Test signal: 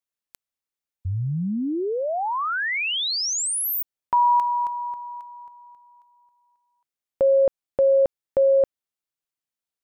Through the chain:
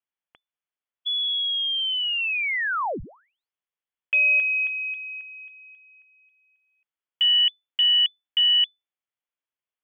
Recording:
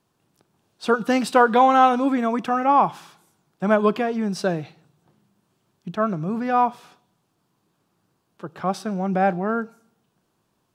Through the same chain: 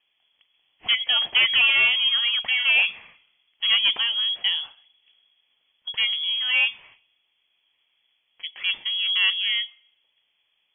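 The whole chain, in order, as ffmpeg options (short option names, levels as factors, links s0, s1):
-filter_complex "[0:a]acrossover=split=130|2700[s0][s1][s2];[s1]asoftclip=type=tanh:threshold=0.211[s3];[s0][s3][s2]amix=inputs=3:normalize=0,lowpass=f=3000:t=q:w=0.5098,lowpass=f=3000:t=q:w=0.6013,lowpass=f=3000:t=q:w=0.9,lowpass=f=3000:t=q:w=2.563,afreqshift=-3500"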